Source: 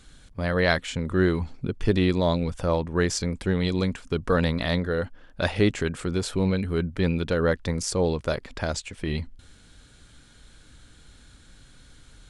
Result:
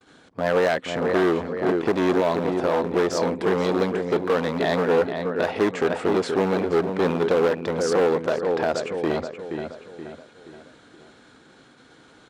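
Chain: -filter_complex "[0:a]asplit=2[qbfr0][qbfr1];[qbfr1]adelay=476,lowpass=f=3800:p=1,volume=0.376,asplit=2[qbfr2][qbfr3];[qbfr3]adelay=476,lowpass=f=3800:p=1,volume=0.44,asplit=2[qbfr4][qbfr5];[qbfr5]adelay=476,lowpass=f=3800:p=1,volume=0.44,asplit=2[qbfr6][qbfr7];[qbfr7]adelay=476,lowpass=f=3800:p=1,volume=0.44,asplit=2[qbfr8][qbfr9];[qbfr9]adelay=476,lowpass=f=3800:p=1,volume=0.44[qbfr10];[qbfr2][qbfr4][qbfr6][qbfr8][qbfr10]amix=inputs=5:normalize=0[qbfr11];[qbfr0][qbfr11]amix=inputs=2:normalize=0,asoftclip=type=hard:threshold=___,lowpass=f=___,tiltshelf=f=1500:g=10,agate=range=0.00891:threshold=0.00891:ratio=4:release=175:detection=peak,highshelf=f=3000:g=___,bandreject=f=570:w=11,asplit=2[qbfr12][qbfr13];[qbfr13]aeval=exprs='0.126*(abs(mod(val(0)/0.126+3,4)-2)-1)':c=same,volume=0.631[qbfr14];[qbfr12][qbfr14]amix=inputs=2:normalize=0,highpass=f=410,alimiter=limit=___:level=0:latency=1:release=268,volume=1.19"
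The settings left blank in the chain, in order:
0.168, 7100, 2.5, 0.266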